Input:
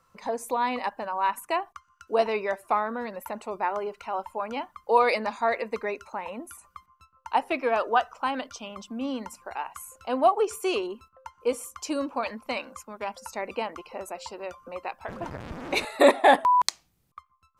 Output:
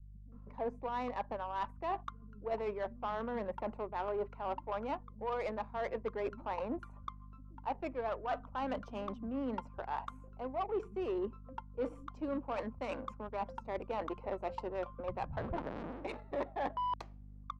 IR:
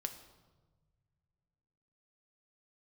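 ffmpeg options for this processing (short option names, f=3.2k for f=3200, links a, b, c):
-filter_complex "[0:a]areverse,acompressor=threshold=-37dB:ratio=12,areverse,aeval=exprs='0.0631*(cos(1*acos(clip(val(0)/0.0631,-1,1)))-cos(1*PI/2))+0.00282*(cos(7*acos(clip(val(0)/0.0631,-1,1)))-cos(7*PI/2))':c=same,aeval=exprs='val(0)+0.00126*(sin(2*PI*50*n/s)+sin(2*PI*2*50*n/s)/2+sin(2*PI*3*50*n/s)/3+sin(2*PI*4*50*n/s)/4+sin(2*PI*5*50*n/s)/5)':c=same,asoftclip=type=tanh:threshold=-33.5dB,adynamicsmooth=sensitivity=4.5:basefreq=790,acrossover=split=170[a][b];[b]adelay=320[c];[a][c]amix=inputs=2:normalize=0,volume=7.5dB"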